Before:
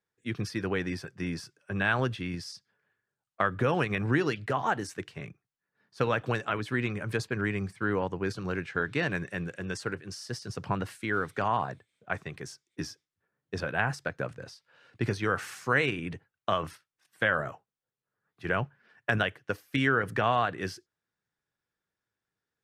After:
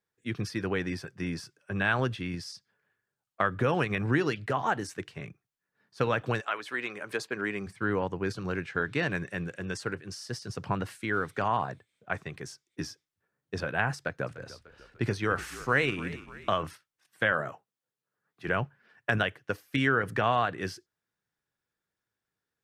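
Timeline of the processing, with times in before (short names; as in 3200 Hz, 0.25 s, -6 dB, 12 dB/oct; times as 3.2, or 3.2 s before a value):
6.4–7.66 HPF 700 Hz -> 210 Hz
13.97–16.63 frequency-shifting echo 0.297 s, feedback 50%, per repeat -41 Hz, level -16.5 dB
17.32–18.48 HPF 130 Hz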